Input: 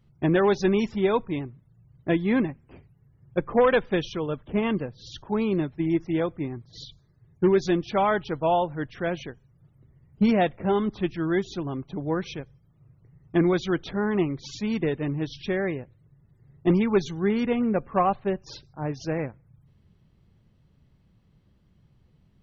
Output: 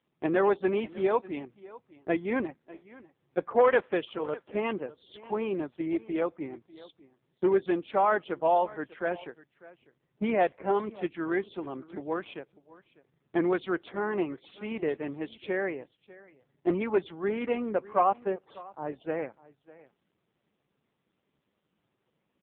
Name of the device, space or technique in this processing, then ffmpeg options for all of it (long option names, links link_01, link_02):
satellite phone: -filter_complex "[0:a]asettb=1/sr,asplit=3[link_01][link_02][link_03];[link_01]atrim=end=17.054[link_04];[link_02]atrim=start=17.05:end=18.89,asetpts=PTS-STARTPTS,afade=type=in:duration=0.004:curve=qsin,afade=type=out:start_time=1.836:duration=0.004:curve=qsin,lowpass=frequency=5700:width=0.5412,lowpass=frequency=5700:width=1.3066[link_05];[link_03]atrim=start=18.886[link_06];[link_04][link_05]acrossfade=duration=0.004:curve1=hsin:curve2=qsin[link_07];[link_07][link_06]acrossfade=duration=0.004:curve1=qsin:curve2=hsin,highpass=380,lowpass=3300,aecho=1:1:598:0.1" -ar 8000 -c:a libopencore_amrnb -b:a 5900